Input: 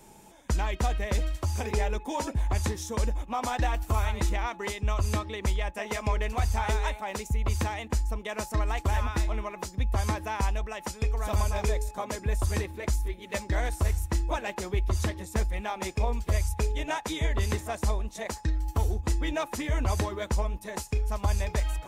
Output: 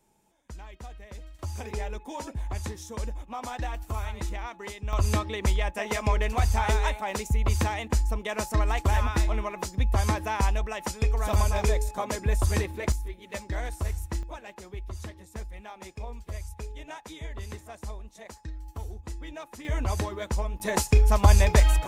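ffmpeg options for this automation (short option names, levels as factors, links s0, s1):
-af "asetnsamples=n=441:p=0,asendcmd='1.39 volume volume -5.5dB;4.93 volume volume 3dB;12.92 volume volume -4dB;14.23 volume volume -10.5dB;19.65 volume volume -1dB;20.6 volume volume 9.5dB',volume=0.168"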